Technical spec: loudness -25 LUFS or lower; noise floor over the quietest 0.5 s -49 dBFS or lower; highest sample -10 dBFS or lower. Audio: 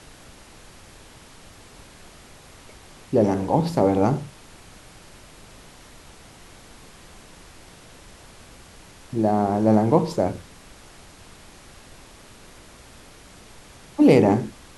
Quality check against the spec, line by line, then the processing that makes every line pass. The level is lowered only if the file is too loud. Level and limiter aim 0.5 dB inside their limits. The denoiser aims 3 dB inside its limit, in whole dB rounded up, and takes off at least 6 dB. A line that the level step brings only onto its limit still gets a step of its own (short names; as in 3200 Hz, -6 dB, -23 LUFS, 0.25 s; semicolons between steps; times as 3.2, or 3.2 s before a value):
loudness -20.5 LUFS: fail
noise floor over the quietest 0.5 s -47 dBFS: fail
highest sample -2.5 dBFS: fail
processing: gain -5 dB; limiter -10.5 dBFS